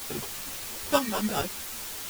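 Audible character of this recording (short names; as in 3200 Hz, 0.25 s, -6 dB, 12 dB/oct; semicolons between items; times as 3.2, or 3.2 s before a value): aliases and images of a low sample rate 2100 Hz, jitter 0%; tremolo saw up 9.2 Hz, depth 60%; a quantiser's noise floor 6-bit, dither triangular; a shimmering, thickened sound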